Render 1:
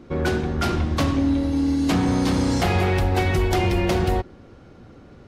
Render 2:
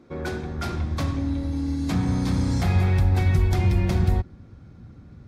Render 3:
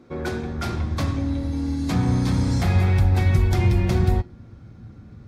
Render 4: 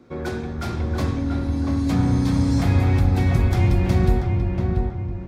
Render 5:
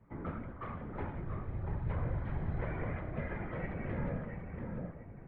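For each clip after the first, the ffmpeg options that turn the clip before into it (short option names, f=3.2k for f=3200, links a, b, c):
-af "highpass=f=110:p=1,bandreject=f=2.9k:w=7.8,asubboost=boost=8.5:cutoff=160,volume=-6.5dB"
-af "flanger=delay=8:depth=1.4:regen=74:speed=0.5:shape=triangular,volume=6.5dB"
-filter_complex "[0:a]acrossover=split=590|990[a][b][c];[c]asoftclip=type=tanh:threshold=-29.5dB[d];[a][b][d]amix=inputs=3:normalize=0,asplit=2[e][f];[f]adelay=686,lowpass=f=1.6k:p=1,volume=-3dB,asplit=2[g][h];[h]adelay=686,lowpass=f=1.6k:p=1,volume=0.46,asplit=2[i][j];[j]adelay=686,lowpass=f=1.6k:p=1,volume=0.46,asplit=2[k][l];[l]adelay=686,lowpass=f=1.6k:p=1,volume=0.46,asplit=2[m][n];[n]adelay=686,lowpass=f=1.6k:p=1,volume=0.46,asplit=2[o][p];[p]adelay=686,lowpass=f=1.6k:p=1,volume=0.46[q];[e][g][i][k][m][o][q]amix=inputs=7:normalize=0"
-af "highpass=f=220:t=q:w=0.5412,highpass=f=220:t=q:w=1.307,lowpass=f=2.5k:t=q:w=0.5176,lowpass=f=2.5k:t=q:w=0.7071,lowpass=f=2.5k:t=q:w=1.932,afreqshift=-210,afftfilt=real='hypot(re,im)*cos(2*PI*random(0))':imag='hypot(re,im)*sin(2*PI*random(1))':win_size=512:overlap=0.75,bandreject=f=64.12:t=h:w=4,bandreject=f=128.24:t=h:w=4,bandreject=f=192.36:t=h:w=4,bandreject=f=256.48:t=h:w=4,bandreject=f=320.6:t=h:w=4,bandreject=f=384.72:t=h:w=4,bandreject=f=448.84:t=h:w=4,bandreject=f=512.96:t=h:w=4,bandreject=f=577.08:t=h:w=4,bandreject=f=641.2:t=h:w=4,bandreject=f=705.32:t=h:w=4,bandreject=f=769.44:t=h:w=4,bandreject=f=833.56:t=h:w=4,bandreject=f=897.68:t=h:w=4,bandreject=f=961.8:t=h:w=4,bandreject=f=1.02592k:t=h:w=4,bandreject=f=1.09004k:t=h:w=4,bandreject=f=1.15416k:t=h:w=4,bandreject=f=1.21828k:t=h:w=4,bandreject=f=1.2824k:t=h:w=4,bandreject=f=1.34652k:t=h:w=4,bandreject=f=1.41064k:t=h:w=4,bandreject=f=1.47476k:t=h:w=4,bandreject=f=1.53888k:t=h:w=4,bandreject=f=1.603k:t=h:w=4,bandreject=f=1.66712k:t=h:w=4,bandreject=f=1.73124k:t=h:w=4,bandreject=f=1.79536k:t=h:w=4,bandreject=f=1.85948k:t=h:w=4,bandreject=f=1.9236k:t=h:w=4,bandreject=f=1.98772k:t=h:w=4,bandreject=f=2.05184k:t=h:w=4,volume=-4dB"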